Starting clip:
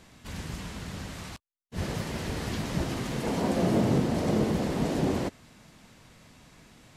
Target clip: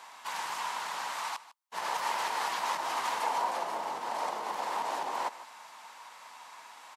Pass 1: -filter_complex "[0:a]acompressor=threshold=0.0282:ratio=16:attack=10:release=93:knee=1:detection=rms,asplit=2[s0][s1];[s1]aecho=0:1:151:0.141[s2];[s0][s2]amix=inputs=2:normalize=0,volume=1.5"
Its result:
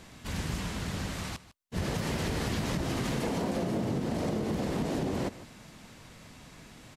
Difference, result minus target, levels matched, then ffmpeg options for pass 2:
1 kHz band -11.0 dB
-filter_complex "[0:a]acompressor=threshold=0.0282:ratio=16:attack=10:release=93:knee=1:detection=rms,highpass=f=930:t=q:w=4.9,asplit=2[s0][s1];[s1]aecho=0:1:151:0.141[s2];[s0][s2]amix=inputs=2:normalize=0,volume=1.5"

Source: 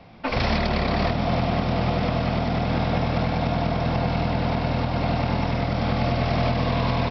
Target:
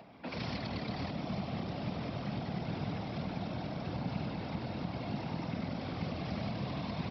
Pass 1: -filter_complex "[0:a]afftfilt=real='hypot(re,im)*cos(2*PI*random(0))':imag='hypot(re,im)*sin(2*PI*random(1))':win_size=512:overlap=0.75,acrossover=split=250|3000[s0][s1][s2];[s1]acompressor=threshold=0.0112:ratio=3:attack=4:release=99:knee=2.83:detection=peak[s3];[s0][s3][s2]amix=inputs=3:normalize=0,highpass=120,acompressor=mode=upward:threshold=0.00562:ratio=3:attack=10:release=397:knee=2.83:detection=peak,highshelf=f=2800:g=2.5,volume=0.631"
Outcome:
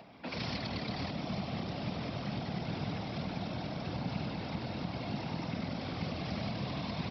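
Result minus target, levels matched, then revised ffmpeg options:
4 kHz band +3.5 dB
-filter_complex "[0:a]afftfilt=real='hypot(re,im)*cos(2*PI*random(0))':imag='hypot(re,im)*sin(2*PI*random(1))':win_size=512:overlap=0.75,acrossover=split=250|3000[s0][s1][s2];[s1]acompressor=threshold=0.0112:ratio=3:attack=4:release=99:knee=2.83:detection=peak[s3];[s0][s3][s2]amix=inputs=3:normalize=0,highpass=120,acompressor=mode=upward:threshold=0.00562:ratio=3:attack=10:release=397:knee=2.83:detection=peak,highshelf=f=2800:g=-3.5,volume=0.631"

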